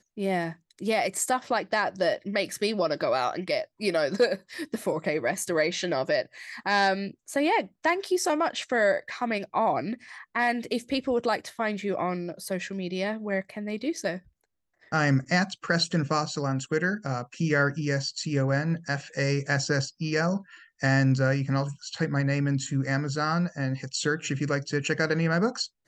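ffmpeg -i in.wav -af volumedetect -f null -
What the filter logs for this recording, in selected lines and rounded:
mean_volume: -27.5 dB
max_volume: -10.6 dB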